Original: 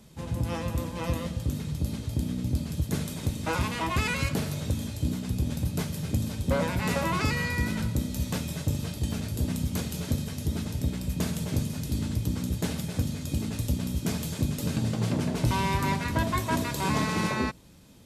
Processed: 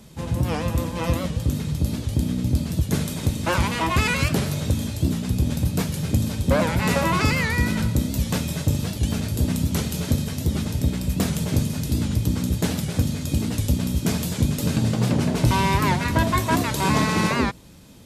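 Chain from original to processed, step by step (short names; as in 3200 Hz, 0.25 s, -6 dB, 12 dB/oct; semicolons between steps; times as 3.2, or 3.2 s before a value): record warp 78 rpm, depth 160 cents; gain +6.5 dB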